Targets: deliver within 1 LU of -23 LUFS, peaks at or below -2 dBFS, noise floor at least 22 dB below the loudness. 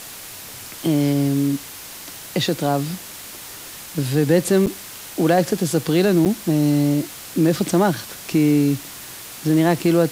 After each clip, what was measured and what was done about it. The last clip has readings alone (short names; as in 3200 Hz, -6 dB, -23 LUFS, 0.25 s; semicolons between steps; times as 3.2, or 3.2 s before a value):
dropouts 2; longest dropout 8.1 ms; noise floor -37 dBFS; noise floor target -42 dBFS; loudness -19.5 LUFS; peak -3.5 dBFS; loudness target -23.0 LUFS
-> interpolate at 4.66/6.25, 8.1 ms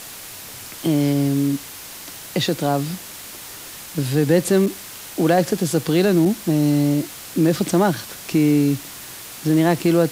dropouts 0; noise floor -37 dBFS; noise floor target -42 dBFS
-> denoiser 6 dB, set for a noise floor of -37 dBFS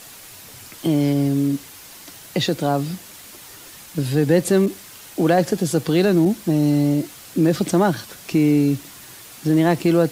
noise floor -42 dBFS; loudness -20.0 LUFS; peak -4.0 dBFS; loudness target -23.0 LUFS
-> gain -3 dB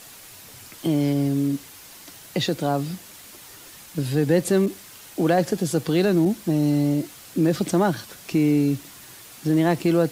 loudness -23.0 LUFS; peak -7.0 dBFS; noise floor -45 dBFS